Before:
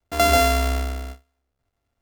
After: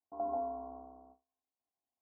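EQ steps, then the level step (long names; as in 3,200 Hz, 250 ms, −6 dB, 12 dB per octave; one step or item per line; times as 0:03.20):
Chebyshev low-pass with heavy ripple 1,100 Hz, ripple 9 dB
first difference
+9.0 dB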